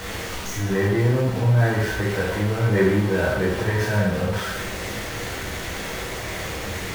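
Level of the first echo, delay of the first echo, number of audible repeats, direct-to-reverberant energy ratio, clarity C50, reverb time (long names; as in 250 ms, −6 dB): no echo audible, no echo audible, no echo audible, −5.5 dB, 2.0 dB, 0.85 s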